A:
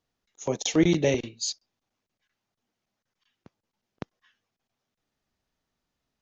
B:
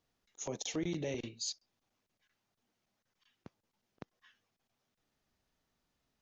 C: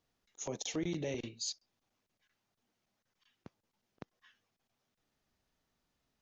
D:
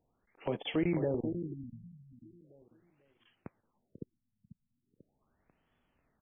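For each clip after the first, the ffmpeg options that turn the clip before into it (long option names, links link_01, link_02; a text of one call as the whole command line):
ffmpeg -i in.wav -af "acompressor=threshold=-41dB:ratio=1.5,alimiter=level_in=4dB:limit=-24dB:level=0:latency=1:release=76,volume=-4dB" out.wav
ffmpeg -i in.wav -af anull out.wav
ffmpeg -i in.wav -filter_complex "[0:a]asplit=2[link_01][link_02];[link_02]aecho=0:1:492|984|1476|1968:0.447|0.13|0.0376|0.0109[link_03];[link_01][link_03]amix=inputs=2:normalize=0,afftfilt=real='re*lt(b*sr/1024,220*pow(3500/220,0.5+0.5*sin(2*PI*0.39*pts/sr)))':imag='im*lt(b*sr/1024,220*pow(3500/220,0.5+0.5*sin(2*PI*0.39*pts/sr)))':win_size=1024:overlap=0.75,volume=6dB" out.wav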